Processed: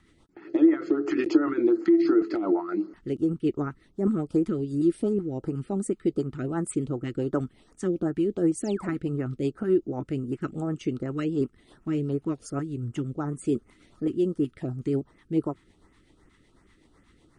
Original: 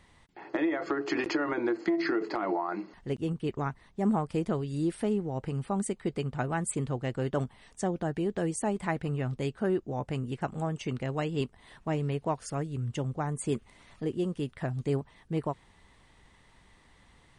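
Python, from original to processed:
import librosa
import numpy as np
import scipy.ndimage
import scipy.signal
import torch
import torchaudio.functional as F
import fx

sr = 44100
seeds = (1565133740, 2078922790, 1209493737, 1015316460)

y = fx.rotary(x, sr, hz=8.0)
y = fx.spec_paint(y, sr, seeds[0], shape='fall', start_s=8.64, length_s=0.31, low_hz=210.0, high_hz=8000.0, level_db=-46.0)
y = fx.filter_lfo_notch(y, sr, shape='saw_up', hz=2.7, low_hz=450.0, high_hz=4500.0, q=0.88)
y = fx.small_body(y, sr, hz=(320.0, 1300.0), ring_ms=25, db=12)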